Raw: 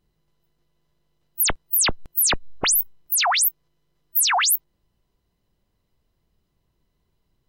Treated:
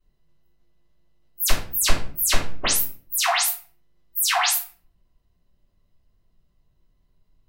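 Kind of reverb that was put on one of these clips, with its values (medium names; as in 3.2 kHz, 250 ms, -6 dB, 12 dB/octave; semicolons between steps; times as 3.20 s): simulated room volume 39 m³, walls mixed, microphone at 2.7 m; trim -14.5 dB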